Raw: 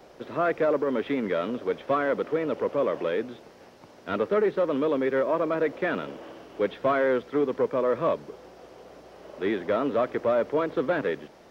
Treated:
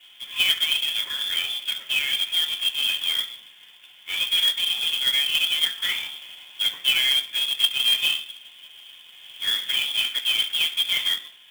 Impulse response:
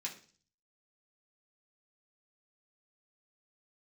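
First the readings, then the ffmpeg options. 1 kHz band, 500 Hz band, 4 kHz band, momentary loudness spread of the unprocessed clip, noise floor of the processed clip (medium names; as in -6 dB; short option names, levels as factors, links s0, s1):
-13.5 dB, under -25 dB, +29.0 dB, 11 LU, -50 dBFS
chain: -filter_complex "[0:a]lowpass=f=3100:t=q:w=0.5098,lowpass=f=3100:t=q:w=0.6013,lowpass=f=3100:t=q:w=0.9,lowpass=f=3100:t=q:w=2.563,afreqshift=-3700[s0];[1:a]atrim=start_sample=2205,afade=t=out:st=0.33:d=0.01,atrim=end_sample=14994[s1];[s0][s1]afir=irnorm=-1:irlink=0,acrusher=bits=2:mode=log:mix=0:aa=0.000001,volume=1.19"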